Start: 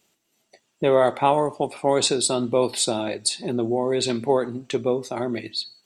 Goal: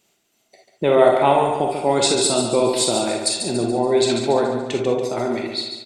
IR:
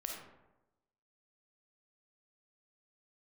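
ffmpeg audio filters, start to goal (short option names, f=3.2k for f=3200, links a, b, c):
-filter_complex "[0:a]aecho=1:1:142|284|426|568|710:0.447|0.201|0.0905|0.0407|0.0183[a];[1:a]atrim=start_sample=2205,afade=t=out:st=0.14:d=0.01,atrim=end_sample=6615,asetrate=48510,aresample=44100[b];[a][b]afir=irnorm=-1:irlink=0,volume=5.5dB"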